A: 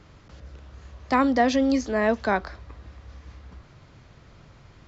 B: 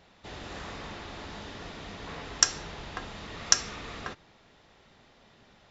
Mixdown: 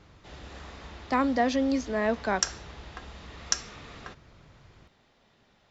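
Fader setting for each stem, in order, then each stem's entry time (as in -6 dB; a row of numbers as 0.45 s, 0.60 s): -4.5 dB, -5.5 dB; 0.00 s, 0.00 s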